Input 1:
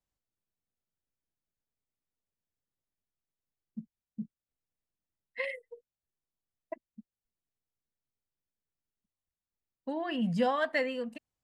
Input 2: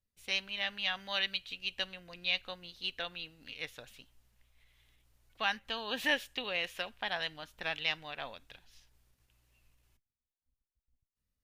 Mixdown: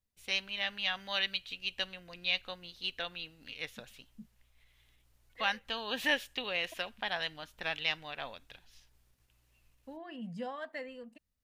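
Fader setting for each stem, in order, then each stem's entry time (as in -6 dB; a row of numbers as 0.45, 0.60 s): -12.0, +0.5 dB; 0.00, 0.00 s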